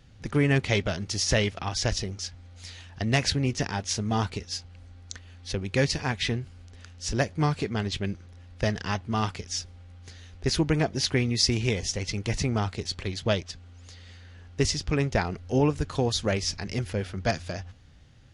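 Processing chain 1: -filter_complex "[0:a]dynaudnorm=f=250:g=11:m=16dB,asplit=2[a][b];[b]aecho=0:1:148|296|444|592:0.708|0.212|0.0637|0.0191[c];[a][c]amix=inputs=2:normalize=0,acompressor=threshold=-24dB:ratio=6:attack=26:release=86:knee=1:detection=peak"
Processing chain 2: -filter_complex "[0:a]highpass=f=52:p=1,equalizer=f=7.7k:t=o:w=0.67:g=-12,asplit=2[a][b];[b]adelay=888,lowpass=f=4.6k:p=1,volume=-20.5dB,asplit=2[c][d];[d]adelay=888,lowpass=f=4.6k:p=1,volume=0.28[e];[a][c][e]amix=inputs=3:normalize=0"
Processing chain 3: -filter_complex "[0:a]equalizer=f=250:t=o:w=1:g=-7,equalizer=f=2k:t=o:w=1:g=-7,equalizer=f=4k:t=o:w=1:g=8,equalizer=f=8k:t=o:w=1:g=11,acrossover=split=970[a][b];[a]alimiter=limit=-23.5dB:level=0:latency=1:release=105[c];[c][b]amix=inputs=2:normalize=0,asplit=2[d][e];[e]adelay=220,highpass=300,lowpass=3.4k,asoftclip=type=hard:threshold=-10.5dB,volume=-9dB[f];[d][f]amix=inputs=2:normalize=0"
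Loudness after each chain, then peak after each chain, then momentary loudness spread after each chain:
-25.0, -28.5, -24.0 LUFS; -6.0, -10.0, -2.0 dBFS; 8, 20, 17 LU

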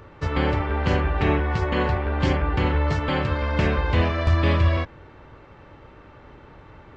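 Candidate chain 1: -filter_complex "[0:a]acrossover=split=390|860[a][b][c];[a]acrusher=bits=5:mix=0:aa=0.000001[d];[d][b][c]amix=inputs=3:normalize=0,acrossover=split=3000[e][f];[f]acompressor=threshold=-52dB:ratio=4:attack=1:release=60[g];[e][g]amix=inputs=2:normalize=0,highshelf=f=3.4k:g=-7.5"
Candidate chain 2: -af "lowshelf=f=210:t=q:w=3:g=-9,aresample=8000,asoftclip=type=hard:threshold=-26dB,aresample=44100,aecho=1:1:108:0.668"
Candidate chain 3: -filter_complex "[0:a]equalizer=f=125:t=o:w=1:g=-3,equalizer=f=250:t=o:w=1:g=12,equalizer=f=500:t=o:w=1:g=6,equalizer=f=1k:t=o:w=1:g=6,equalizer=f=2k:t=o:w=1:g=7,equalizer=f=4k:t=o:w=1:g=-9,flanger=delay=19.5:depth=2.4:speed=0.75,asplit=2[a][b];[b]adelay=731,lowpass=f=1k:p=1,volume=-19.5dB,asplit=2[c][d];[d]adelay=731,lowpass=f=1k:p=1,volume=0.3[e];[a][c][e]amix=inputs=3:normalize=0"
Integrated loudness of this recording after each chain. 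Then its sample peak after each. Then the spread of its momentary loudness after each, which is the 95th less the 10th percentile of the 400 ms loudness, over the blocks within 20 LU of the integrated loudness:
-23.0, -27.0, -19.5 LUFS; -9.0, -18.5, -4.5 dBFS; 4, 20, 10 LU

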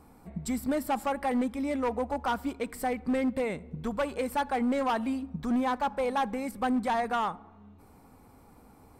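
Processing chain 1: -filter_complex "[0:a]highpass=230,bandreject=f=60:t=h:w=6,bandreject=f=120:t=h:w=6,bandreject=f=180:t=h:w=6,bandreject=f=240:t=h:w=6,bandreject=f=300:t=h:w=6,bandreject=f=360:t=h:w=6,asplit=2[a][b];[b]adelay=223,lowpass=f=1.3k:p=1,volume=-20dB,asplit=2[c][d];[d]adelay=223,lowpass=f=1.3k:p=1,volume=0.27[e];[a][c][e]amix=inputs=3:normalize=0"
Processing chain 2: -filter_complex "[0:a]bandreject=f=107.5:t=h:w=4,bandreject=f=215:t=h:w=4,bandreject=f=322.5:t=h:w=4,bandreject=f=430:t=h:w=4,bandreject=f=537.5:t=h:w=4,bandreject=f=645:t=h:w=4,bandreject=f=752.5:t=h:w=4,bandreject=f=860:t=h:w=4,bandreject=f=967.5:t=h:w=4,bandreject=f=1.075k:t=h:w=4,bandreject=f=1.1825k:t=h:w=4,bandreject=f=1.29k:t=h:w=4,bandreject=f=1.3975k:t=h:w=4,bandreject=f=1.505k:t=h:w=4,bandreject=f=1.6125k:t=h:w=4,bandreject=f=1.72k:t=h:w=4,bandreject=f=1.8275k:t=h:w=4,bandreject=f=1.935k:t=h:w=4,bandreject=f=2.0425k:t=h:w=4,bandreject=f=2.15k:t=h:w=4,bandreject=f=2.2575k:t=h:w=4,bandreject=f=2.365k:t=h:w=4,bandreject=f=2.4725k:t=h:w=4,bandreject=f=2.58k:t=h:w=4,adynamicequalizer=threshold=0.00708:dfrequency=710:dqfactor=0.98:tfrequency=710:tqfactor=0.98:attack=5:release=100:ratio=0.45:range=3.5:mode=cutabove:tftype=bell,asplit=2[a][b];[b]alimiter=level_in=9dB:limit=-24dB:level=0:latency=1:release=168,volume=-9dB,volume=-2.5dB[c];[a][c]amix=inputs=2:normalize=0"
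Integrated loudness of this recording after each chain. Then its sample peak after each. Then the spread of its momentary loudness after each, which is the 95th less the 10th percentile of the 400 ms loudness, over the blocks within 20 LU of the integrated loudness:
-31.5, -30.5 LUFS; -18.5, -20.5 dBFS; 7, 6 LU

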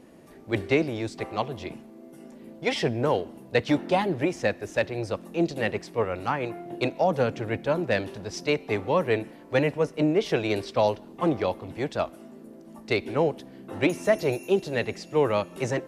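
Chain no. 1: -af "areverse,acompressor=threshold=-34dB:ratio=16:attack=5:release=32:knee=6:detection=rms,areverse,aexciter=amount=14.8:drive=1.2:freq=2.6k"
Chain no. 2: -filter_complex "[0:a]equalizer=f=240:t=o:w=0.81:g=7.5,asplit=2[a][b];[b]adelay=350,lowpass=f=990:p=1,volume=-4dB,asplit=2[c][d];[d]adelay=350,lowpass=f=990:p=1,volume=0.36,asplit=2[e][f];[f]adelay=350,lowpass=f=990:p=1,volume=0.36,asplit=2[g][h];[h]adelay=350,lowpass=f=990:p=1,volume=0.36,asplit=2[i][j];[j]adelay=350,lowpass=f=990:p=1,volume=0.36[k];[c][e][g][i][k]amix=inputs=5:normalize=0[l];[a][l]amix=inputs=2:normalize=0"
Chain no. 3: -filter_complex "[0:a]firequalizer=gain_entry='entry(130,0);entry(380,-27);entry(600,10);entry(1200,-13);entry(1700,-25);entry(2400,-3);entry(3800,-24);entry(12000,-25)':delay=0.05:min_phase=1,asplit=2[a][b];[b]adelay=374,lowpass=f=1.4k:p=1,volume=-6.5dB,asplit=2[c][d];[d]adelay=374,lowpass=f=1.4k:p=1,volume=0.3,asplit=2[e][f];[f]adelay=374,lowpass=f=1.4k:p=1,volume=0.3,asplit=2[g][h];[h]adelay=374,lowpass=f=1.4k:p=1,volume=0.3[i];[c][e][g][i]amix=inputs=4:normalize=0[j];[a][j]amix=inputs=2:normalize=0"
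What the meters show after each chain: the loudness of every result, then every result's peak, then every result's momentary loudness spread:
-27.0, -24.0, -25.5 LUFS; -6.5, -7.0, -4.0 dBFS; 15, 8, 13 LU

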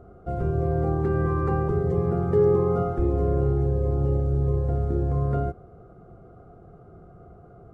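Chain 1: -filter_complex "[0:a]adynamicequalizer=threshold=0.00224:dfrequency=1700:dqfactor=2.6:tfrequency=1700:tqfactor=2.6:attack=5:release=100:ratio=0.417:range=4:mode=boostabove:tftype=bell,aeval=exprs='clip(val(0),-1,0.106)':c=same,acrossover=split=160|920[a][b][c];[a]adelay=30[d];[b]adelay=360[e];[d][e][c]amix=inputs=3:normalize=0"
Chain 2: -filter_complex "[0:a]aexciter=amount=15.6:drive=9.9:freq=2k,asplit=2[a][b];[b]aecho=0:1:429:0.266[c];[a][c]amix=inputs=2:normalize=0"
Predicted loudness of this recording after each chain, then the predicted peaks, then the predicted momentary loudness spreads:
-26.5, -23.5 LUFS; -12.5, -8.5 dBFS; 9, 8 LU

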